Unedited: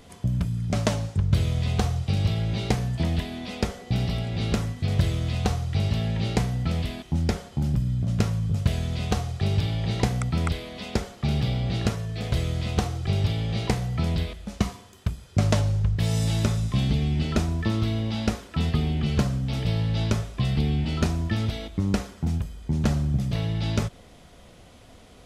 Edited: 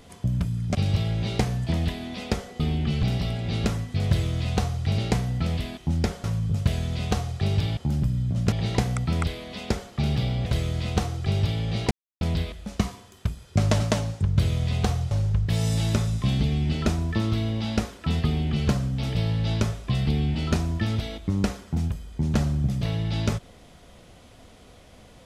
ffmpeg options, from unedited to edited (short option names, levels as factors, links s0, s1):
-filter_complex "[0:a]asplit=13[s0][s1][s2][s3][s4][s5][s6][s7][s8][s9][s10][s11][s12];[s0]atrim=end=0.752[s13];[s1]atrim=start=2.058:end=3.912[s14];[s2]atrim=start=18.758:end=19.192[s15];[s3]atrim=start=3.908:end=5.862[s16];[s4]atrim=start=6.228:end=7.492[s17];[s5]atrim=start=8.238:end=9.772[s18];[s6]atrim=start=7.488:end=8.242[s19];[s7]atrim=start=9.768:end=11.712[s20];[s8]atrim=start=12.268:end=13.72,asetpts=PTS-STARTPTS,afade=t=out:st=1.448:d=0.004:c=hsin[s21];[s9]atrim=start=13.72:end=14.02,asetpts=PTS-STARTPTS,volume=0[s22];[s10]atrim=start=14.02:end=15.612,asetpts=PTS-STARTPTS,afade=t=in:d=0.004:c=hsin[s23];[s11]atrim=start=0.748:end=2.062[s24];[s12]atrim=start=15.608[s25];[s13][s14]acrossfade=d=0.004:c1=hsin:c2=hsin[s26];[s26][s15]acrossfade=d=0.004:c1=hsin:c2=hsin[s27];[s27][s16]acrossfade=d=0.004:c1=hsin:c2=hsin[s28];[s28][s17]acrossfade=d=0.004:c1=hsin:c2=hsin[s29];[s29][s18]acrossfade=d=0.004:c1=hsin:c2=hsin[s30];[s30][s19]acrossfade=d=0.004:c1=hsin:c2=hsin[s31];[s31][s20]acrossfade=d=0.004:c1=hsin:c2=hsin[s32];[s21][s22][s23]concat=n=3:v=0:a=1[s33];[s32][s33]acrossfade=d=0.004:c1=hsin:c2=hsin[s34];[s34][s24]acrossfade=d=0.004:c1=hsin:c2=hsin[s35];[s35][s25]acrossfade=d=0.004:c1=hsin:c2=hsin"